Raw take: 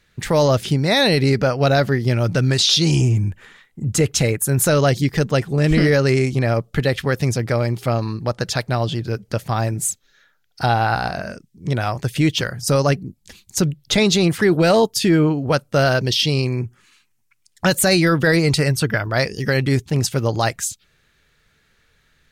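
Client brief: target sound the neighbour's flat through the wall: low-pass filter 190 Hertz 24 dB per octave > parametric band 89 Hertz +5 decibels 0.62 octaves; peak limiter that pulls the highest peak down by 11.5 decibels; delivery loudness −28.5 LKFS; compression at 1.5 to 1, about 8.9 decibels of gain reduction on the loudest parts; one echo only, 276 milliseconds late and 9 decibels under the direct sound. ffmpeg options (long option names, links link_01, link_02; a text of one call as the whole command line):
ffmpeg -i in.wav -af "acompressor=threshold=-37dB:ratio=1.5,alimiter=level_in=0.5dB:limit=-24dB:level=0:latency=1,volume=-0.5dB,lowpass=frequency=190:width=0.5412,lowpass=frequency=190:width=1.3066,equalizer=frequency=89:width_type=o:width=0.62:gain=5,aecho=1:1:276:0.355,volume=8dB" out.wav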